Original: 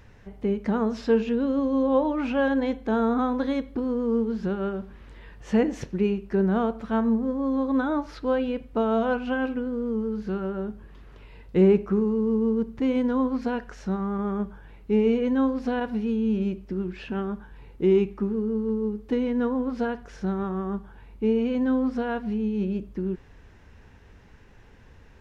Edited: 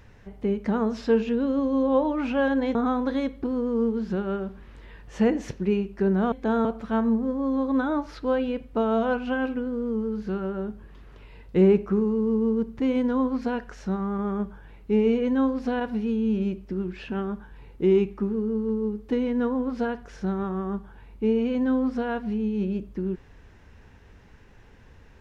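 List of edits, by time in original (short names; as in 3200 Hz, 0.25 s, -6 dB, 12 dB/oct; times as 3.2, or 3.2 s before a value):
2.75–3.08 move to 6.65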